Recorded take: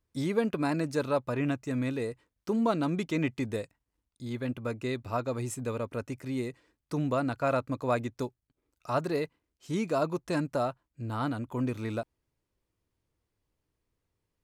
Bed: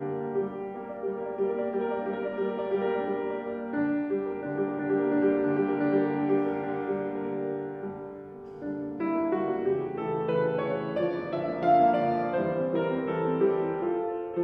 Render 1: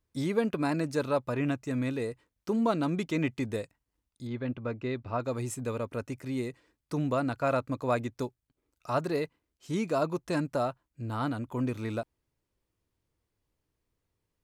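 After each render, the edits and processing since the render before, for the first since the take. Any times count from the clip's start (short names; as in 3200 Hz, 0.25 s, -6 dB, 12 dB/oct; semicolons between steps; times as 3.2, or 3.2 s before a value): 4.27–5.2 air absorption 190 m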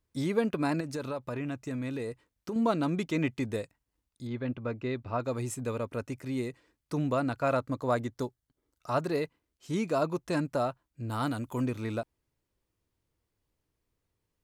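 0.8–2.56 compressor 5:1, threshold -31 dBFS; 7.56–8.91 notch 2500 Hz, Q 6.1; 11.09–11.65 high shelf 5800 Hz -> 3700 Hz +11.5 dB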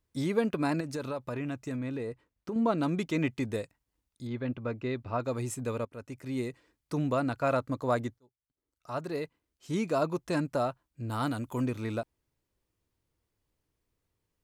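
1.76–2.78 high shelf 3600 Hz -9.5 dB; 5.85–6.4 fade in, from -15.5 dB; 8.19–9.75 fade in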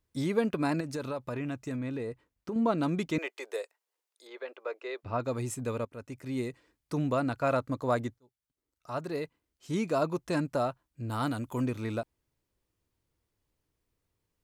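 3.18–5.03 steep high-pass 390 Hz 48 dB/oct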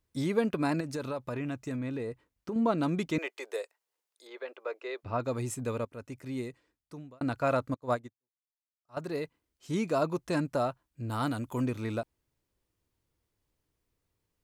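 6.08–7.21 fade out; 7.74–8.97 upward expander 2.5:1, over -45 dBFS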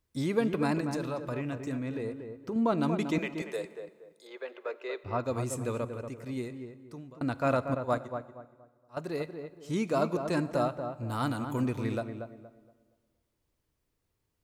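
darkening echo 0.235 s, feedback 31%, low-pass 1400 Hz, level -6.5 dB; plate-style reverb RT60 1.6 s, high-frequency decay 0.9×, DRR 16.5 dB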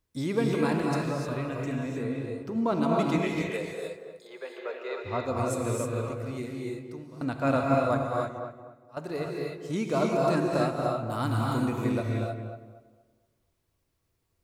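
non-linear reverb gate 0.33 s rising, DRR -1 dB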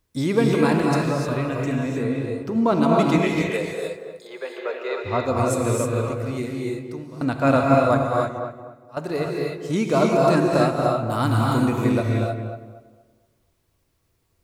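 gain +7.5 dB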